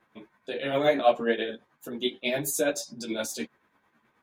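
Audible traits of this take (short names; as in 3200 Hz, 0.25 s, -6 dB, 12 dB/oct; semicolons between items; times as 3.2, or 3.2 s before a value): tremolo triangle 9.4 Hz, depth 60%; a shimmering, thickened sound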